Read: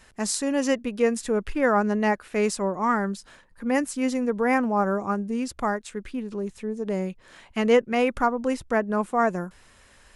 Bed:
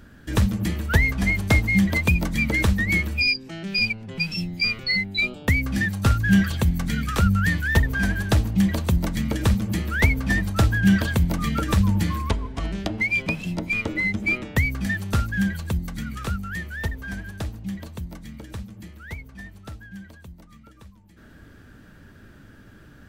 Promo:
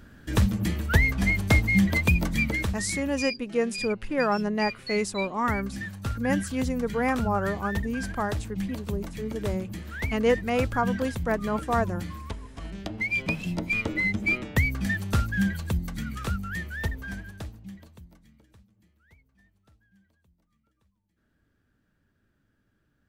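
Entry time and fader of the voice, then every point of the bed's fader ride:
2.55 s, -3.5 dB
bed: 2.4 s -2 dB
2.82 s -12 dB
12.49 s -12 dB
13.33 s -2 dB
16.99 s -2 dB
18.67 s -23.5 dB

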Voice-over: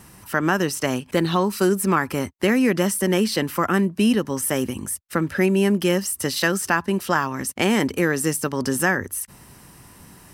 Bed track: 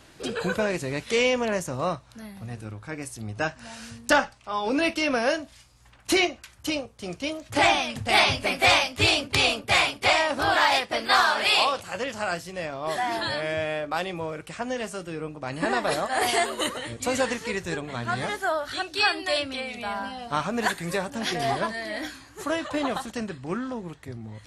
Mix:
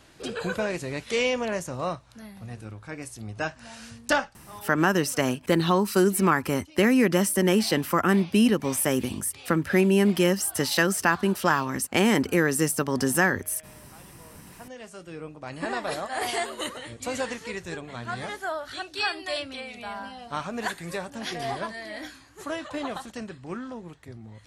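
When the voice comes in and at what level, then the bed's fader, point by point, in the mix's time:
4.35 s, -1.5 dB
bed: 4.12 s -2.5 dB
4.89 s -25.5 dB
14.02 s -25.5 dB
15.16 s -5 dB

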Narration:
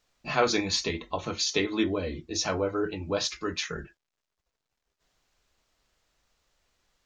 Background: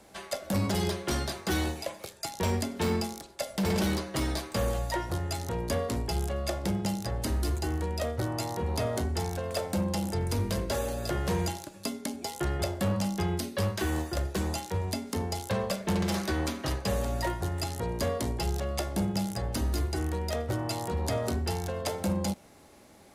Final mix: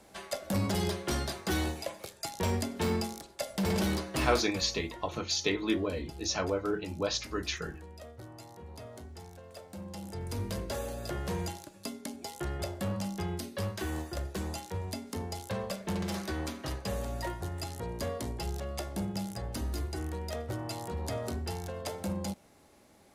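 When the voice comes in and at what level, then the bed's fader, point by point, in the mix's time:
3.90 s, -3.0 dB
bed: 4.36 s -2 dB
4.67 s -16.5 dB
9.65 s -16.5 dB
10.43 s -5.5 dB

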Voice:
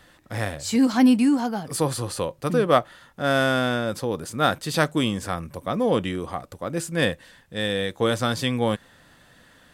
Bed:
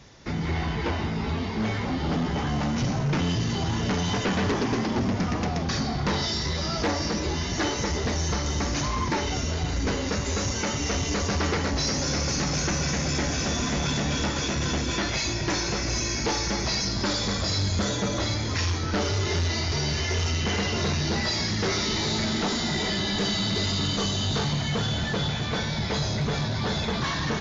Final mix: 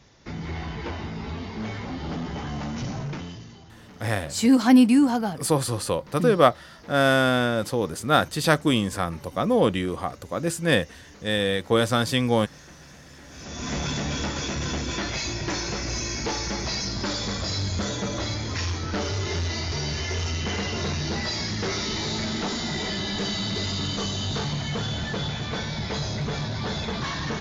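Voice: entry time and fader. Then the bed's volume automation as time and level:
3.70 s, +1.5 dB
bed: 3.02 s -5 dB
3.67 s -22.5 dB
13.21 s -22.5 dB
13.72 s -2 dB

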